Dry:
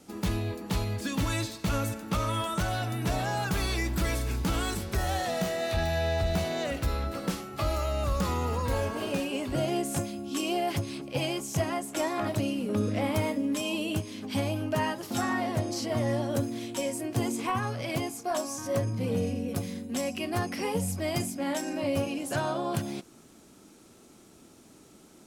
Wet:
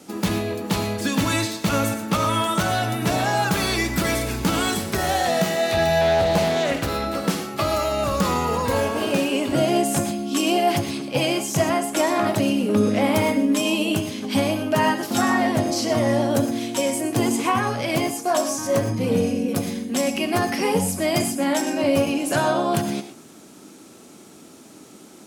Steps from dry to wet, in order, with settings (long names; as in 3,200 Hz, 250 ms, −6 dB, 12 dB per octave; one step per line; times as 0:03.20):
high-pass filter 140 Hz 12 dB per octave
reverb whose tail is shaped and stops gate 140 ms rising, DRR 9 dB
0:06.01–0:06.90: highs frequency-modulated by the lows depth 0.43 ms
level +9 dB